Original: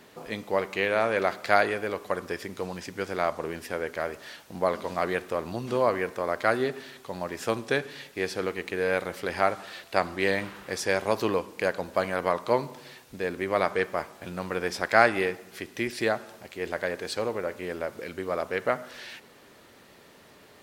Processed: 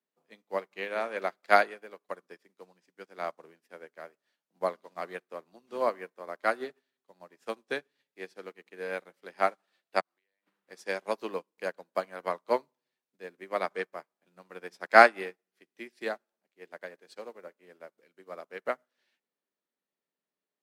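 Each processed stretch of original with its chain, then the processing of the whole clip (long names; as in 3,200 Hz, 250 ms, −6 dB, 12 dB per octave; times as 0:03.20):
0:10.00–0:10.47: high-pass filter 1,000 Hz 6 dB per octave + downward compressor 16 to 1, threshold −39 dBFS
whole clip: Butterworth high-pass 150 Hz 72 dB per octave; dynamic equaliser 190 Hz, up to −3 dB, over −45 dBFS, Q 1; expander for the loud parts 2.5 to 1, over −46 dBFS; level +5.5 dB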